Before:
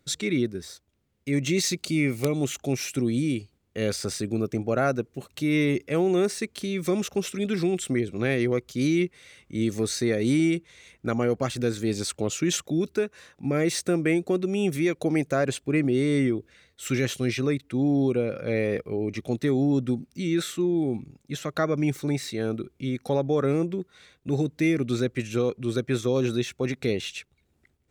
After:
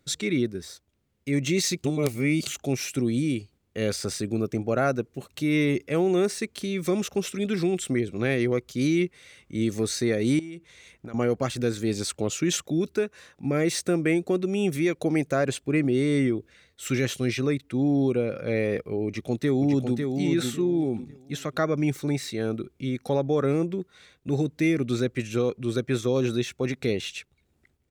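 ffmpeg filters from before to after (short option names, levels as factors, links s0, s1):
-filter_complex "[0:a]asettb=1/sr,asplit=3[s0][s1][s2];[s0]atrim=end=10.394[s3];[s1]atrim=start=10.39:end=11.14,asetpts=PTS-STARTPTS,afade=t=in:d=0.004:c=qsin,afade=t=out:st=0.746:d=0.004:c=qsin,acompressor=threshold=0.0178:ratio=10:attack=3.2:release=140:knee=1:detection=peak[s4];[s2]atrim=start=11.136[s5];[s3][s4]acrossfade=d=0.004:c1=hsin:c2=qsin[s6];[s6][s5]acrossfade=d=0.004:c1=qsin:c2=hsin,asplit=2[s7][s8];[s8]afade=t=in:st=19.06:d=0.01,afade=t=out:st=20.09:d=0.01,aecho=0:1:550|1100|1650:0.562341|0.140585|0.0351463[s9];[s7][s9]amix=inputs=2:normalize=0,asplit=3[s10][s11][s12];[s10]atrim=end=1.842[s13];[s11]atrim=start=1.838:end=2.472,asetpts=PTS-STARTPTS,areverse[s14];[s12]atrim=start=2.468[s15];[s13][s14]acrossfade=d=0.004:c1=hsin:c2=hsin[s16];[s16][s15]acrossfade=d=0.004:c1=hsin:c2=hsin"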